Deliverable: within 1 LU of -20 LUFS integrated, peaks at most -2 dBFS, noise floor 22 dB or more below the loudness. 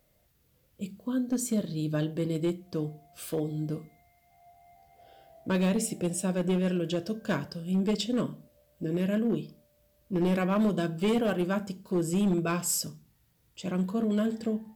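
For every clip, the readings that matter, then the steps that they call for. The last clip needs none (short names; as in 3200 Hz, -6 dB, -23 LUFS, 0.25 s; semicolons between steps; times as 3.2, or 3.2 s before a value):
clipped 1.1%; flat tops at -21.0 dBFS; loudness -30.0 LUFS; peak -21.0 dBFS; loudness target -20.0 LUFS
-> clip repair -21 dBFS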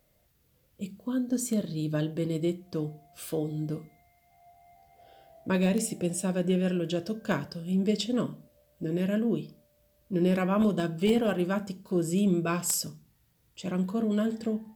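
clipped 0.0%; loudness -29.5 LUFS; peak -12.0 dBFS; loudness target -20.0 LUFS
-> gain +9.5 dB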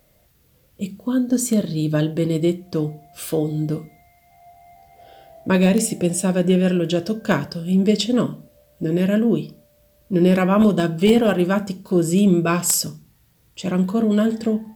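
loudness -20.0 LUFS; peak -2.5 dBFS; noise floor -58 dBFS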